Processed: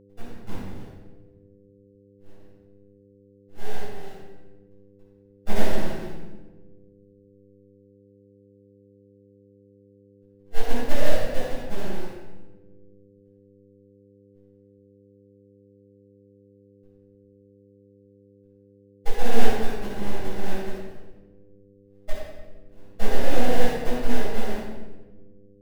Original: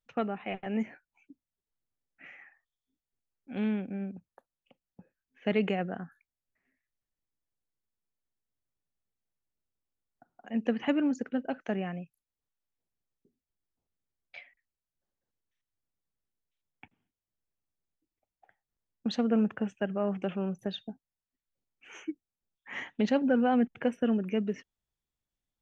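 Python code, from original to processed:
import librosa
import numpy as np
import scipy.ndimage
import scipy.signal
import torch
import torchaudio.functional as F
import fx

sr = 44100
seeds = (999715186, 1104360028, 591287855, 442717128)

p1 = fx.rattle_buzz(x, sr, strikes_db=-41.0, level_db=-23.0)
p2 = fx.noise_reduce_blind(p1, sr, reduce_db=15)
p3 = fx.env_lowpass_down(p2, sr, base_hz=2200.0, full_db=-29.5)
p4 = fx.rider(p3, sr, range_db=10, speed_s=2.0)
p5 = p3 + F.gain(torch.from_numpy(p4), 1.0).numpy()
p6 = fx.filter_sweep_bandpass(p5, sr, from_hz=4100.0, to_hz=240.0, start_s=0.92, end_s=4.81, q=0.95)
p7 = fx.sample_hold(p6, sr, seeds[0], rate_hz=1200.0, jitter_pct=20)
p8 = np.abs(p7)
p9 = p8 + fx.echo_feedback(p8, sr, ms=89, feedback_pct=45, wet_db=-11.5, dry=0)
p10 = fx.room_shoebox(p9, sr, seeds[1], volume_m3=630.0, walls='mixed', distance_m=7.0)
p11 = fx.dmg_buzz(p10, sr, base_hz=100.0, harmonics=5, level_db=-41.0, tilt_db=0, odd_only=False)
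y = F.gain(torch.from_numpy(p11), -14.0).numpy()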